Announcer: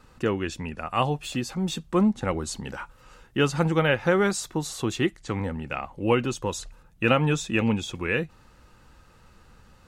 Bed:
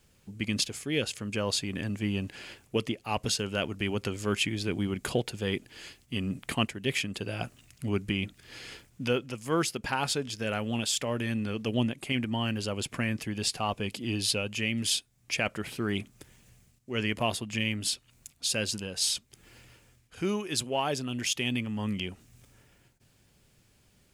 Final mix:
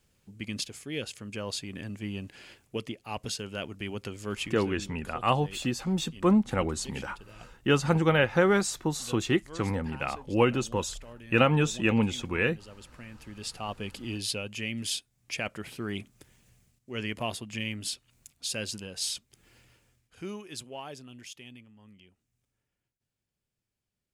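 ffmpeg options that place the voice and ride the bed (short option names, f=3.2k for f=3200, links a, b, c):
-filter_complex "[0:a]adelay=4300,volume=-1dB[a];[1:a]volume=7dB,afade=t=out:st=4.34:d=0.55:silence=0.281838,afade=t=in:st=13.11:d=0.69:silence=0.237137,afade=t=out:st=19.01:d=2.74:silence=0.105925[b];[a][b]amix=inputs=2:normalize=0"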